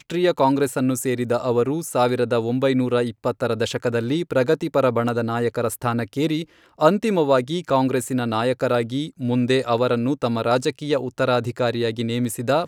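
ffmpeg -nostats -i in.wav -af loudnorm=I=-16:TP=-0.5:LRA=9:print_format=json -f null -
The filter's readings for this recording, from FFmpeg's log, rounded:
"input_i" : "-21.7",
"input_tp" : "-2.0",
"input_lra" : "1.1",
"input_thresh" : "-31.7",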